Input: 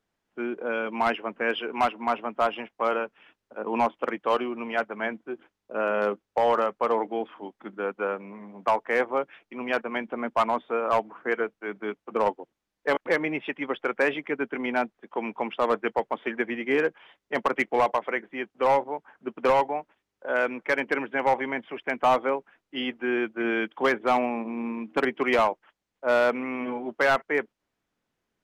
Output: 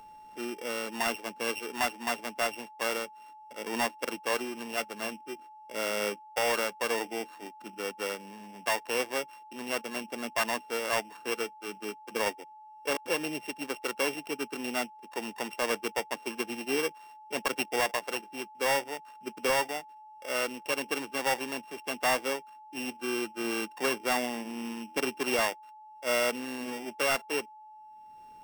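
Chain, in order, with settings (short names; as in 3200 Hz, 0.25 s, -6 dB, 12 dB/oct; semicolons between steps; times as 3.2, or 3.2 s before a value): sample sorter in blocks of 16 samples; upward compressor, threshold -39 dBFS; whine 860 Hz -42 dBFS; gain -6 dB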